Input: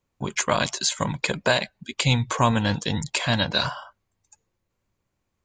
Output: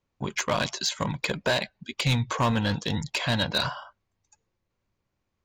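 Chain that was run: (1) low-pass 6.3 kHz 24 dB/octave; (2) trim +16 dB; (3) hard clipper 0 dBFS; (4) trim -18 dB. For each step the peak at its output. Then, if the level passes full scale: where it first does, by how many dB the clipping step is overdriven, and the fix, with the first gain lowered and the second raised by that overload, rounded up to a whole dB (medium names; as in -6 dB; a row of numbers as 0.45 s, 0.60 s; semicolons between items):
-7.5 dBFS, +8.5 dBFS, 0.0 dBFS, -18.0 dBFS; step 2, 8.5 dB; step 2 +7 dB, step 4 -9 dB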